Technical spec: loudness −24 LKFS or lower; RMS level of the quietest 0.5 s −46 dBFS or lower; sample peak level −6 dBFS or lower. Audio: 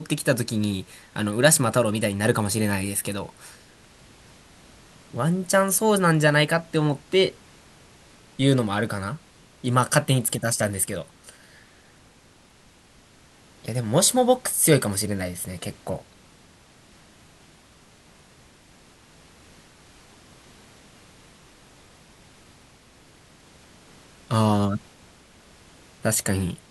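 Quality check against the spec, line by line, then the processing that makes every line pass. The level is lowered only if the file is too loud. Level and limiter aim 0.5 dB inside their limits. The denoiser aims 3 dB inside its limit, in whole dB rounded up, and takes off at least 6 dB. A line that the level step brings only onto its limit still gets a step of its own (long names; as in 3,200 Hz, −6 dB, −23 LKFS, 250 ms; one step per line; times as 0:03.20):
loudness −22.5 LKFS: out of spec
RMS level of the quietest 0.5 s −54 dBFS: in spec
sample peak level −2.0 dBFS: out of spec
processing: level −2 dB
brickwall limiter −6.5 dBFS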